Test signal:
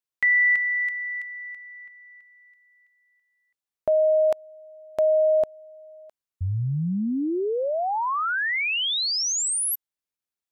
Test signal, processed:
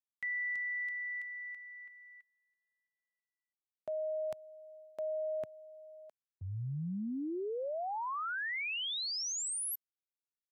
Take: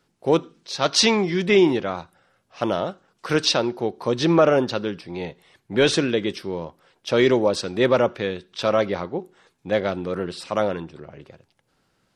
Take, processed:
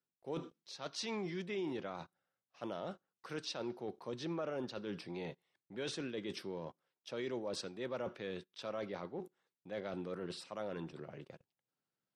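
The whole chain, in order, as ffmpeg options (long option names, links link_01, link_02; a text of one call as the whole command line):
ffmpeg -i in.wav -af "highpass=frequency=110:width=0.5412,highpass=frequency=110:width=1.3066,agate=range=-19dB:threshold=-53dB:ratio=16:release=37:detection=peak,areverse,acompressor=threshold=-28dB:ratio=6:attack=0.28:release=235:knee=6:detection=rms,areverse,volume=-7dB" out.wav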